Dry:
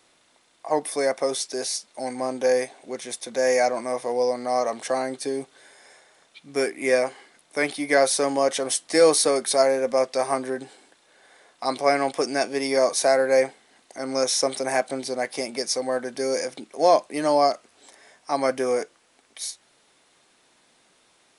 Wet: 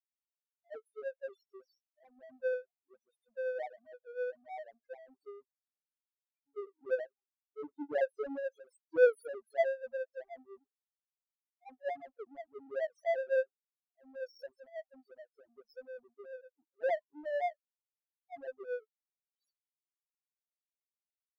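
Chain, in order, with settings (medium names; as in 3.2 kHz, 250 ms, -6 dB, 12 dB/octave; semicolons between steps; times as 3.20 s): 6.98–8.44 s: tilt shelf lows +6 dB, about 850 Hz; loudest bins only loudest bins 1; power-law waveshaper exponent 2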